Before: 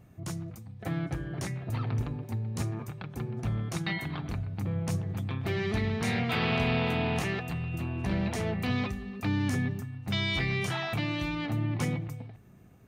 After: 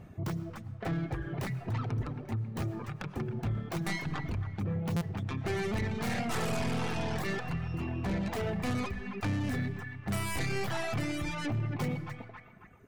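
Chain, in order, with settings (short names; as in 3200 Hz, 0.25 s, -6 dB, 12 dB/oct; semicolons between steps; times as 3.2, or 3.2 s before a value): tracing distortion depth 0.38 ms; high shelf 5600 Hz -11.5 dB; notches 60/120/180/240/300 Hz; narrowing echo 0.272 s, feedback 52%, band-pass 1500 Hz, level -7 dB; in parallel at +3 dB: compressor, threshold -38 dBFS, peak gain reduction 13 dB; on the sum: reverb removal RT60 1.6 s; on a send at -16 dB: reverb RT60 1.1 s, pre-delay 60 ms; on the sum: soft clip -26 dBFS, distortion -14 dB; stuck buffer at 4.96, samples 256, times 8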